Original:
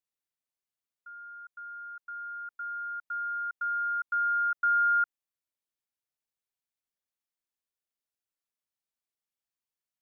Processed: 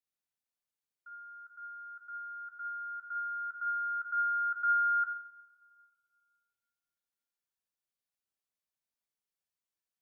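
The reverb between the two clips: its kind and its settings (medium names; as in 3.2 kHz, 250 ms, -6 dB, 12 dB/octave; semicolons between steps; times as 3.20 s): two-slope reverb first 0.53 s, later 2.1 s, from -20 dB, DRR 2 dB; trim -4.5 dB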